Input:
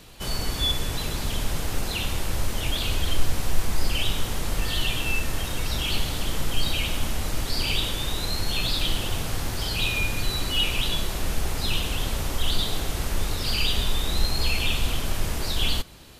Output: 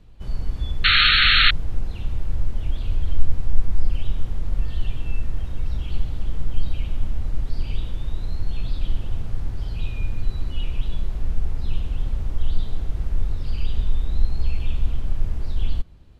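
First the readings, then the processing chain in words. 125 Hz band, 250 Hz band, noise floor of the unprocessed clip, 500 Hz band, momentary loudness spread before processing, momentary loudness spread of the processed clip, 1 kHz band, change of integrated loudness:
+2.0 dB, −5.5 dB, −31 dBFS, −10.0 dB, 5 LU, 13 LU, +0.5 dB, +2.0 dB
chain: RIAA equalisation playback
sound drawn into the spectrogram noise, 0:00.84–0:01.51, 1,200–4,400 Hz −3 dBFS
level −13 dB

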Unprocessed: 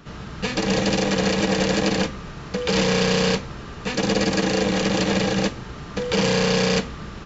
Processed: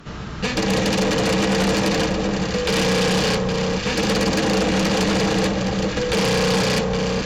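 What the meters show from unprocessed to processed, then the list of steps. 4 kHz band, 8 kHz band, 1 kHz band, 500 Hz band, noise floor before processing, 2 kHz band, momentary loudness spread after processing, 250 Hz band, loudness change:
+2.0 dB, can't be measured, +3.5 dB, +2.0 dB, −37 dBFS, +2.0 dB, 4 LU, +2.0 dB, +2.0 dB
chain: delay that swaps between a low-pass and a high-pass 408 ms, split 1,200 Hz, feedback 66%, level −4.5 dB
sine wavefolder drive 9 dB, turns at −6 dBFS
level −9 dB

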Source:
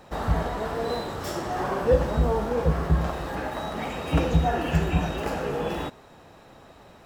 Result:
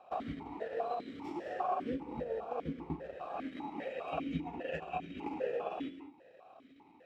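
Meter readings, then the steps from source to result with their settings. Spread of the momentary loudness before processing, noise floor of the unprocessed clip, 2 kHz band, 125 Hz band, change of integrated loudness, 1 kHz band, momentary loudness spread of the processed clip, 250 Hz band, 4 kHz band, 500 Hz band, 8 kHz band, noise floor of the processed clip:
9 LU, −51 dBFS, −14.0 dB, −22.5 dB, −13.0 dB, −9.5 dB, 12 LU, −11.0 dB, −17.0 dB, −12.0 dB, below −25 dB, −61 dBFS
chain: transient designer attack +6 dB, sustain −11 dB
in parallel at +0.5 dB: downward compressor, threshold −26 dBFS, peak gain reduction 15.5 dB
on the sum: reverb whose tail is shaped and stops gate 240 ms rising, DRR 8.5 dB
formant filter that steps through the vowels 5 Hz
level −5 dB

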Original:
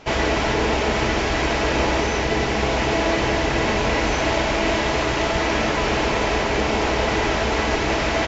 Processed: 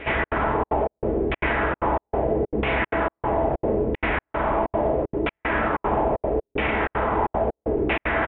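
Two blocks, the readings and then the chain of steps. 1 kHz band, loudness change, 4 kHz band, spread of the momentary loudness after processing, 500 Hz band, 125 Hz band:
−2.0 dB, −3.5 dB, −15.0 dB, 2 LU, −2.0 dB, −4.5 dB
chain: brickwall limiter −12.5 dBFS, peak gain reduction 4.5 dB
echo ahead of the sound 264 ms −15 dB
gate pattern "xxx.xxxx.xx..x" 190 BPM −60 dB
auto-filter low-pass saw down 0.76 Hz 360–2,500 Hz
downsampling to 8,000 Hz
level −2.5 dB

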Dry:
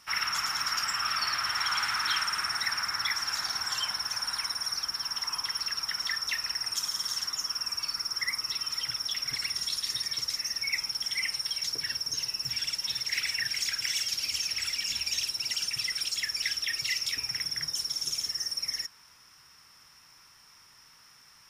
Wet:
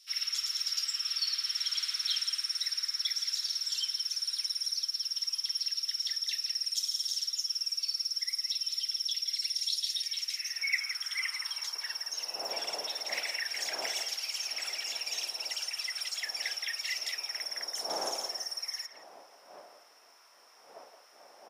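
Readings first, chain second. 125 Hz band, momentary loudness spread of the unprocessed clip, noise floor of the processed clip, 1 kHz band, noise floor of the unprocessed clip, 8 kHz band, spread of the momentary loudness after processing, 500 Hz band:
below −20 dB, 3 LU, −58 dBFS, −9.5 dB, −57 dBFS, −3.0 dB, 5 LU, +8.5 dB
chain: wind on the microphone 450 Hz −44 dBFS
high-pass filter 100 Hz
high-pass filter sweep 3,900 Hz → 690 Hz, 0:09.74–0:12.05
far-end echo of a speakerphone 170 ms, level −8 dB
level −5 dB

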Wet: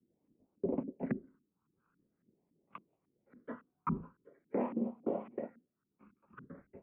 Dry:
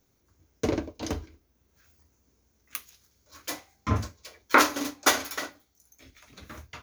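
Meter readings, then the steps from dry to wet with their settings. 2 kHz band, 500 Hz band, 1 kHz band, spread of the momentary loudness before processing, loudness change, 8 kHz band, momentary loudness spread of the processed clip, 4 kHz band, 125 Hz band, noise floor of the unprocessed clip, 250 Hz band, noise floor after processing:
−27.5 dB, −6.5 dB, −16.5 dB, 19 LU, −11.5 dB, below −40 dB, 19 LU, below −40 dB, −11.5 dB, −70 dBFS, −4.5 dB, −85 dBFS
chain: auto-filter low-pass saw up 3.6 Hz 290–1,500 Hz
transient designer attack +5 dB, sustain −2 dB
single-sideband voice off tune −56 Hz 190–2,700 Hz
all-pass phaser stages 12, 0.45 Hz, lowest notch 600–1,700 Hz
brickwall limiter −19.5 dBFS, peak gain reduction 13.5 dB
level −5 dB

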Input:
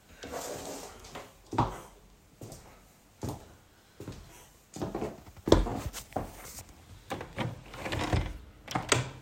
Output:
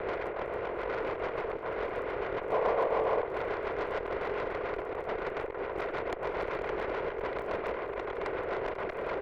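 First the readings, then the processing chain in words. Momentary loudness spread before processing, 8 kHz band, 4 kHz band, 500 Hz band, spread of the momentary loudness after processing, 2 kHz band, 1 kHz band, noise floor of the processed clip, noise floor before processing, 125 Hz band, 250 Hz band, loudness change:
20 LU, below −25 dB, −9.0 dB, +6.5 dB, 6 LU, +4.0 dB, +3.5 dB, −39 dBFS, −60 dBFS, −12.0 dB, −5.0 dB, +0.5 dB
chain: compressor on every frequency bin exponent 0.2
reverb reduction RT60 1.1 s
single-sideband voice off tune +79 Hz 260–2,100 Hz
compressor whose output falls as the input rises −28 dBFS, ratio −1
surface crackle 18 per second −41 dBFS
rotating-speaker cabinet horn 7 Hz
tube saturation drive 27 dB, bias 0.65
on a send: single-tap delay 492 ms −14 dB
on the sum: gain on a spectral selection 0:02.52–0:03.26, 430–1,200 Hz +7 dB

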